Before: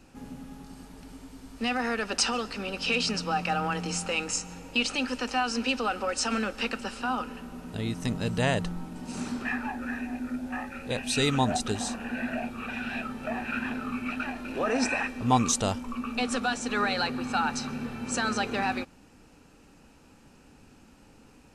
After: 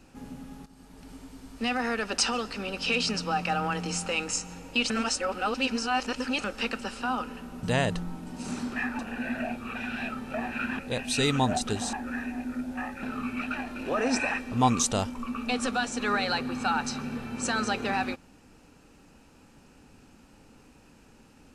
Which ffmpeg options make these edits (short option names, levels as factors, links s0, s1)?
-filter_complex "[0:a]asplit=9[s0][s1][s2][s3][s4][s5][s6][s7][s8];[s0]atrim=end=0.66,asetpts=PTS-STARTPTS,afade=t=out:st=0.656:d=0.004:c=hsin:silence=0.251189[s9];[s1]atrim=start=0.66:end=4.902,asetpts=PTS-STARTPTS,afade=t=in:d=0.46:silence=0.251189[s10];[s2]atrim=start=4.898:end=6.442,asetpts=PTS-STARTPTS,areverse[s11];[s3]atrim=start=6.438:end=7.632[s12];[s4]atrim=start=8.318:end=9.682[s13];[s5]atrim=start=11.918:end=13.722[s14];[s6]atrim=start=10.778:end=11.922[s15];[s7]atrim=start=9.678:end=10.782[s16];[s8]atrim=start=13.718[s17];[s9][s10]concat=n=2:v=0:a=1[s18];[s18][s11]acrossfade=d=0.004:c1=hsin:c2=hsin[s19];[s19][s12]acrossfade=d=0.004:c1=hsin:c2=hsin[s20];[s20][s13]acrossfade=d=0.004:c1=hsin:c2=hsin[s21];[s21][s14]acrossfade=d=0.004:c1=hsin:c2=hsin[s22];[s22][s15]acrossfade=d=0.004:c1=hsin:c2=hsin[s23];[s23][s16]acrossfade=d=0.004:c1=hsin:c2=hsin[s24];[s24][s17]acrossfade=d=0.004:c1=hsin:c2=hsin"